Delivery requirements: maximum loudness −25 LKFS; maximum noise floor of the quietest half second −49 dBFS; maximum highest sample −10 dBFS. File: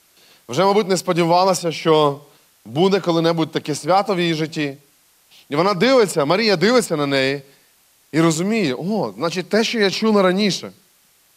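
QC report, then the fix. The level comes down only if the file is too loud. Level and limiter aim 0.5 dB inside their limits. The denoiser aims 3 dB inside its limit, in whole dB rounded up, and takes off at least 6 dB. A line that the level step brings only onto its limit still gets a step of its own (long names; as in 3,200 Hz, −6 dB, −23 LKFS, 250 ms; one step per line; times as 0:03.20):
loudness −18.0 LKFS: out of spec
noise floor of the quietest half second −57 dBFS: in spec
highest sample −4.5 dBFS: out of spec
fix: level −7.5 dB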